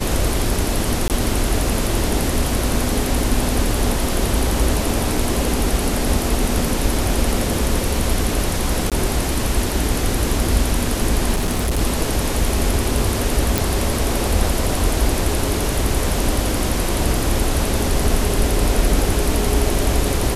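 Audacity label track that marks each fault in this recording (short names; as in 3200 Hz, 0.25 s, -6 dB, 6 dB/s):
1.080000	1.100000	gap 18 ms
8.900000	8.920000	gap 17 ms
11.330000	11.790000	clipped -15.5 dBFS
13.580000	13.580000	pop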